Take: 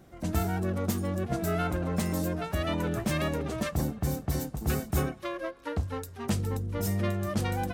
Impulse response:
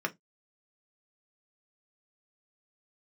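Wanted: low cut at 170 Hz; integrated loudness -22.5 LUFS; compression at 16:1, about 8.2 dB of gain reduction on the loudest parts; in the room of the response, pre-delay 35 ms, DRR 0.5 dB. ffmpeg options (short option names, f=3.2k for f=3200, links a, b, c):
-filter_complex "[0:a]highpass=170,acompressor=threshold=-34dB:ratio=16,asplit=2[a][b];[1:a]atrim=start_sample=2205,adelay=35[c];[b][c]afir=irnorm=-1:irlink=0,volume=-7dB[d];[a][d]amix=inputs=2:normalize=0,volume=14dB"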